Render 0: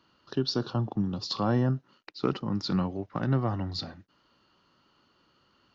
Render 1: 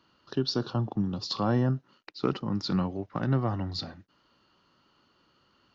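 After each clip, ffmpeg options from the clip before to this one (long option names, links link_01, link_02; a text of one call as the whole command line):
ffmpeg -i in.wav -af anull out.wav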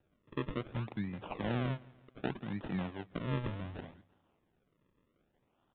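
ffmpeg -i in.wav -af "acrusher=samples=40:mix=1:aa=0.000001:lfo=1:lforange=40:lforate=0.66,aecho=1:1:167|334|501:0.0708|0.034|0.0163,aresample=8000,aresample=44100,volume=-9dB" out.wav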